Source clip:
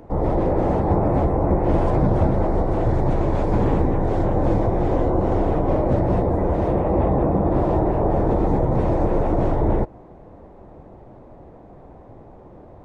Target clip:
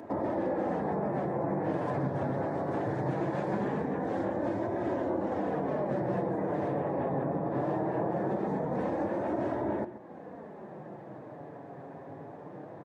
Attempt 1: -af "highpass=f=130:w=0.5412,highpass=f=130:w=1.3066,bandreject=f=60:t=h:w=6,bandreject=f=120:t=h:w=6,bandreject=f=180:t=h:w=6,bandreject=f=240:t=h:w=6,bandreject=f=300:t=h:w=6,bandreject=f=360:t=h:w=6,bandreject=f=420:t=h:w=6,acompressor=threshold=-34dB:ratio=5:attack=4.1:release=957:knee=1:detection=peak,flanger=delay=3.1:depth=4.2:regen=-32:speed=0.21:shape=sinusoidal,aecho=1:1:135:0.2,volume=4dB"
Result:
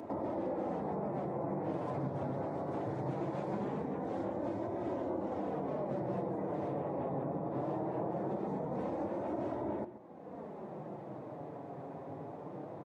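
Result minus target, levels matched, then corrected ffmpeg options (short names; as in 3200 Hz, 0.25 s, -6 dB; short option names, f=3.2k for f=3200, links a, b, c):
compressor: peak gain reduction +5.5 dB; 2000 Hz band -4.5 dB
-af "highpass=f=130:w=0.5412,highpass=f=130:w=1.3066,equalizer=f=1.7k:t=o:w=0.26:g=10,bandreject=f=60:t=h:w=6,bandreject=f=120:t=h:w=6,bandreject=f=180:t=h:w=6,bandreject=f=240:t=h:w=6,bandreject=f=300:t=h:w=6,bandreject=f=360:t=h:w=6,bandreject=f=420:t=h:w=6,acompressor=threshold=-27dB:ratio=5:attack=4.1:release=957:knee=1:detection=peak,flanger=delay=3.1:depth=4.2:regen=-32:speed=0.21:shape=sinusoidal,aecho=1:1:135:0.2,volume=4dB"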